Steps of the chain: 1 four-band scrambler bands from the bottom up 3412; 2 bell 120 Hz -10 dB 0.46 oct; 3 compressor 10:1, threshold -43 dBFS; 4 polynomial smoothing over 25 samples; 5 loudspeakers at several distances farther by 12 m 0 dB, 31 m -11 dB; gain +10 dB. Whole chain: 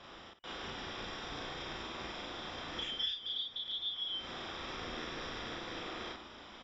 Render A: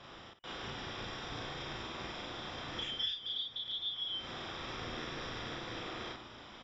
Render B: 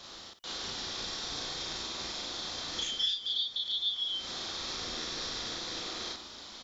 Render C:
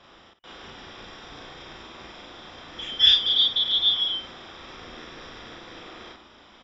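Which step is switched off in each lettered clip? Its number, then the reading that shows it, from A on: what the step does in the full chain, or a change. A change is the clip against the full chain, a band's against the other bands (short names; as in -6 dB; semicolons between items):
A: 2, 125 Hz band +4.5 dB; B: 4, 4 kHz band +6.5 dB; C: 3, mean gain reduction 3.5 dB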